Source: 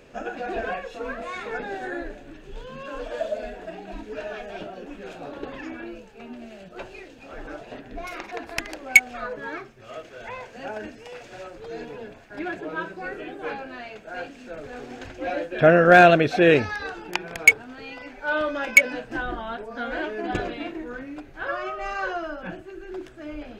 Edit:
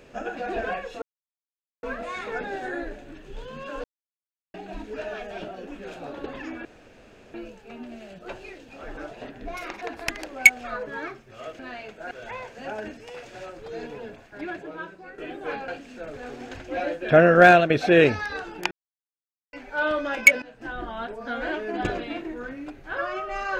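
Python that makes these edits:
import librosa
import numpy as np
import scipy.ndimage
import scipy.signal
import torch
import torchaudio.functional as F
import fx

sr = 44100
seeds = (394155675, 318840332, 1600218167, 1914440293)

y = fx.edit(x, sr, fx.insert_silence(at_s=1.02, length_s=0.81),
    fx.silence(start_s=3.03, length_s=0.7),
    fx.insert_room_tone(at_s=5.84, length_s=0.69),
    fx.fade_out_to(start_s=12.08, length_s=1.08, floor_db=-12.5),
    fx.move(start_s=13.66, length_s=0.52, to_s=10.09),
    fx.fade_out_to(start_s=15.95, length_s=0.25, floor_db=-9.0),
    fx.silence(start_s=17.21, length_s=0.82),
    fx.fade_in_from(start_s=18.92, length_s=0.61, floor_db=-17.5), tone=tone)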